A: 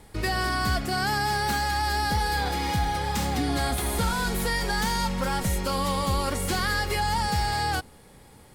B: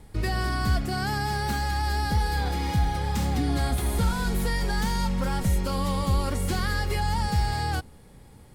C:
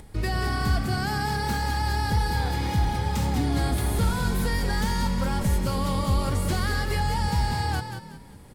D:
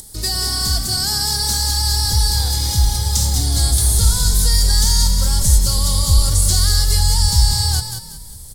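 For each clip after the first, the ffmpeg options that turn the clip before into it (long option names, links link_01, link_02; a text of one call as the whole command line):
ffmpeg -i in.wav -af "lowshelf=frequency=260:gain=9.5,volume=-4.5dB" out.wav
ffmpeg -i in.wav -filter_complex "[0:a]acompressor=mode=upward:threshold=-42dB:ratio=2.5,asplit=2[link_01][link_02];[link_02]asplit=4[link_03][link_04][link_05][link_06];[link_03]adelay=185,afreqshift=40,volume=-8dB[link_07];[link_04]adelay=370,afreqshift=80,volume=-17.6dB[link_08];[link_05]adelay=555,afreqshift=120,volume=-27.3dB[link_09];[link_06]adelay=740,afreqshift=160,volume=-36.9dB[link_10];[link_07][link_08][link_09][link_10]amix=inputs=4:normalize=0[link_11];[link_01][link_11]amix=inputs=2:normalize=0" out.wav
ffmpeg -i in.wav -filter_complex "[0:a]asubboost=boost=7.5:cutoff=86,acrossover=split=9800[link_01][link_02];[link_02]acompressor=threshold=-54dB:ratio=4:attack=1:release=60[link_03];[link_01][link_03]amix=inputs=2:normalize=0,aexciter=amount=13.9:drive=4.4:freq=3800,volume=-1.5dB" out.wav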